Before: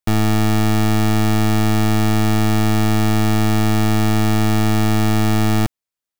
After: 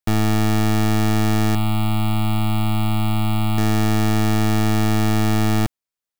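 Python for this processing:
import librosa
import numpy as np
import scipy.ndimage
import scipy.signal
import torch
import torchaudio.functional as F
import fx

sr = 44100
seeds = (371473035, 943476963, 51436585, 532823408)

y = fx.fixed_phaser(x, sr, hz=1700.0, stages=6, at=(1.55, 3.58))
y = F.gain(torch.from_numpy(y), -2.0).numpy()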